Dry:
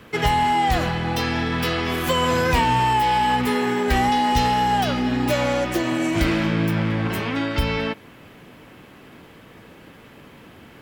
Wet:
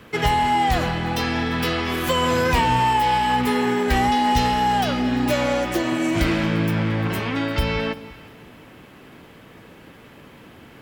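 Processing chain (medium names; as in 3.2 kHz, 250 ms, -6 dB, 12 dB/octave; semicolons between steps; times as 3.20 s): echo whose repeats swap between lows and highs 173 ms, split 920 Hz, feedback 52%, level -13.5 dB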